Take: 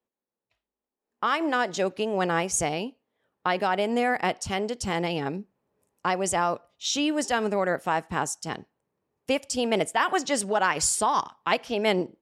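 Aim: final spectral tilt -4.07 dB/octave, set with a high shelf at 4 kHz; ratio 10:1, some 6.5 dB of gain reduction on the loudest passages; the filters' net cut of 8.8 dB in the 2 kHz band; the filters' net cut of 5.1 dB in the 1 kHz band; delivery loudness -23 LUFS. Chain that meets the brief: peaking EQ 1 kHz -4.5 dB; peaking EQ 2 kHz -8.5 dB; treble shelf 4 kHz -7 dB; compression 10:1, threshold -28 dBFS; trim +11 dB

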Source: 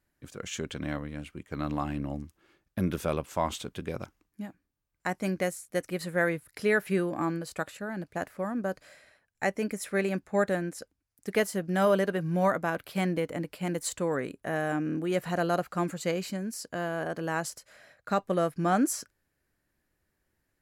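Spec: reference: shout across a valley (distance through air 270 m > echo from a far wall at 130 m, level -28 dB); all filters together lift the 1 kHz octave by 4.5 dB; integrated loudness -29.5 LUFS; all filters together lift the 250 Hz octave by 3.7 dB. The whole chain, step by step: distance through air 270 m; peaking EQ 250 Hz +5.5 dB; peaking EQ 1 kHz +7.5 dB; echo from a far wall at 130 m, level -28 dB; trim -1.5 dB

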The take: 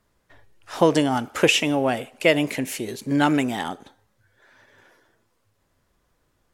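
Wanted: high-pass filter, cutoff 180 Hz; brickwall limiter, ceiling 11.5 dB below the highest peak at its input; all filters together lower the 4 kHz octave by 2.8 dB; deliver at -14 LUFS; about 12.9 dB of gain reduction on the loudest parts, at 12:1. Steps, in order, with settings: high-pass 180 Hz; peaking EQ 4 kHz -4.5 dB; compression 12:1, threshold -25 dBFS; trim +19 dB; peak limiter -3.5 dBFS

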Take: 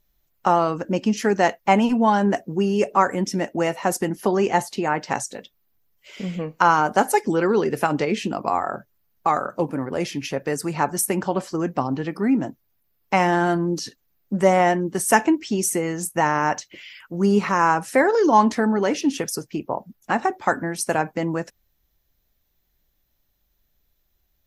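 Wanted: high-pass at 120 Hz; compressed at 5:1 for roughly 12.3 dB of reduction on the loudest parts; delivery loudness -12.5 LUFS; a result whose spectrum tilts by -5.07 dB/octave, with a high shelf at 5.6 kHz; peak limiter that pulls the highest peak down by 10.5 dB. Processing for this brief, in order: high-pass 120 Hz; treble shelf 5.6 kHz -8 dB; compression 5:1, threshold -25 dBFS; trim +19 dB; peak limiter -1 dBFS

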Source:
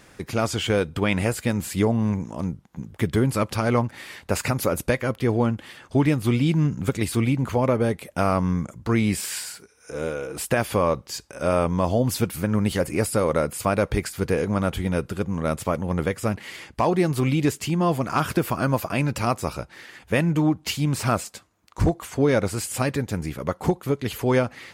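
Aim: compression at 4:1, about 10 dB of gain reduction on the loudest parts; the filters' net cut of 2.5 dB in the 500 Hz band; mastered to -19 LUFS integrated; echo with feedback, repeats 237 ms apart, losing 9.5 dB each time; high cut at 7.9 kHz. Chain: low-pass 7.9 kHz; peaking EQ 500 Hz -3 dB; compression 4:1, threshold -29 dBFS; feedback delay 237 ms, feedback 33%, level -9.5 dB; trim +14 dB

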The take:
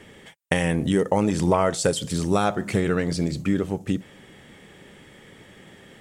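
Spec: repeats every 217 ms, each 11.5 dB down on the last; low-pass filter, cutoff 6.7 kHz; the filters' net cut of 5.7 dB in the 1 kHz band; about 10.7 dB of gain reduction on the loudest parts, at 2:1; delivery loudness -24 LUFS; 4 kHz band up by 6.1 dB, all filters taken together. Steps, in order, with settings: low-pass 6.7 kHz; peaking EQ 1 kHz -8.5 dB; peaking EQ 4 kHz +9 dB; compression 2:1, threshold -37 dBFS; feedback delay 217 ms, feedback 27%, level -11.5 dB; trim +9.5 dB

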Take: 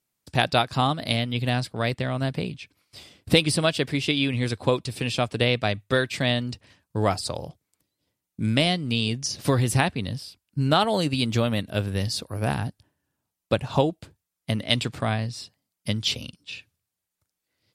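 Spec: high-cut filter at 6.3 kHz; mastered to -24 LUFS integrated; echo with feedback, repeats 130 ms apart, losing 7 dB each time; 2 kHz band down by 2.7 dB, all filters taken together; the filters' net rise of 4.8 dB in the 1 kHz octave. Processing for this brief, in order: low-pass 6.3 kHz; peaking EQ 1 kHz +8 dB; peaking EQ 2 kHz -6 dB; feedback delay 130 ms, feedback 45%, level -7 dB; trim -0.5 dB

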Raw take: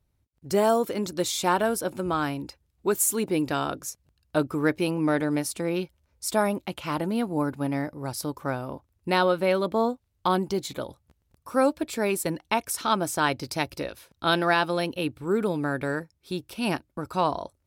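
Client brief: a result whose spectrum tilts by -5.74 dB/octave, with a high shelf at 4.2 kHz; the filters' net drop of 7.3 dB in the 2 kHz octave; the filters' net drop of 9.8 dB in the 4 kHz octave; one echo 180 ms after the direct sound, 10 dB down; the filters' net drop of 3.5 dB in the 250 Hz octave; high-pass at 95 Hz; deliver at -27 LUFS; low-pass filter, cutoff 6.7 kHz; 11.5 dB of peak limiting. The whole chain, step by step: high-pass 95 Hz; low-pass 6.7 kHz; peaking EQ 250 Hz -4.5 dB; peaking EQ 2 kHz -8 dB; peaking EQ 4 kHz -5.5 dB; treble shelf 4.2 kHz -6.5 dB; peak limiter -24 dBFS; delay 180 ms -10 dB; trim +7.5 dB

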